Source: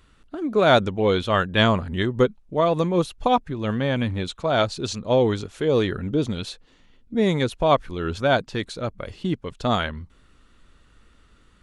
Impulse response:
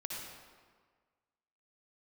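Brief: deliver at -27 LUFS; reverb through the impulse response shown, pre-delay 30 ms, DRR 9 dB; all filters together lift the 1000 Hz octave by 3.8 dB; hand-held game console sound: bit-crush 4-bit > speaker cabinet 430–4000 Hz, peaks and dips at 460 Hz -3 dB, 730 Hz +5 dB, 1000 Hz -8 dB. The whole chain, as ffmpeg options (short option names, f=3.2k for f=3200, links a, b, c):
-filter_complex "[0:a]equalizer=f=1k:t=o:g=5.5,asplit=2[a][b];[1:a]atrim=start_sample=2205,adelay=30[c];[b][c]afir=irnorm=-1:irlink=0,volume=-9.5dB[d];[a][d]amix=inputs=2:normalize=0,acrusher=bits=3:mix=0:aa=0.000001,highpass=430,equalizer=f=460:t=q:w=4:g=-3,equalizer=f=730:t=q:w=4:g=5,equalizer=f=1k:t=q:w=4:g=-8,lowpass=f=4k:w=0.5412,lowpass=f=4k:w=1.3066,volume=-5dB"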